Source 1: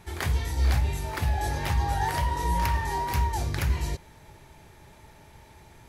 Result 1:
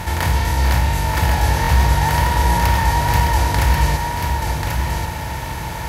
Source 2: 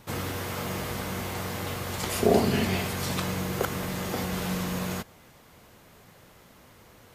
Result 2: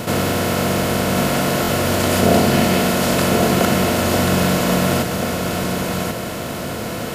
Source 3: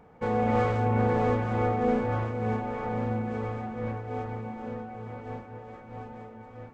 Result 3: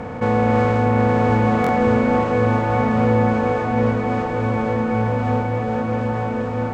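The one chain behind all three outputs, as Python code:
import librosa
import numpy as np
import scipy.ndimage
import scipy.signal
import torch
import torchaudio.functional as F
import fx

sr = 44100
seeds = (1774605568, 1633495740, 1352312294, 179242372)

p1 = fx.bin_compress(x, sr, power=0.4)
p2 = fx.notch_comb(p1, sr, f0_hz=400.0)
p3 = p2 + fx.echo_single(p2, sr, ms=1087, db=-4.5, dry=0)
p4 = fx.buffer_glitch(p3, sr, at_s=(1.62,), block=1024, repeats=2)
y = p4 * 10.0 ** (6.0 / 20.0)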